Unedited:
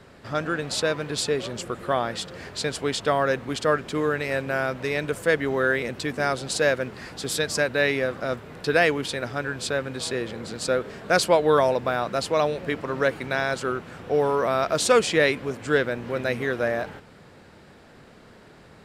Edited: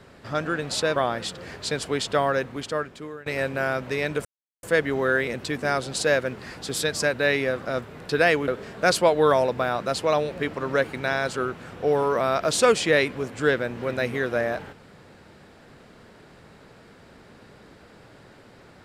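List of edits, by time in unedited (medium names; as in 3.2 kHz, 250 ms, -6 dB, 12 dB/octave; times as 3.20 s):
0.96–1.89 s: delete
3.14–4.19 s: fade out, to -20.5 dB
5.18 s: insert silence 0.38 s
9.03–10.75 s: delete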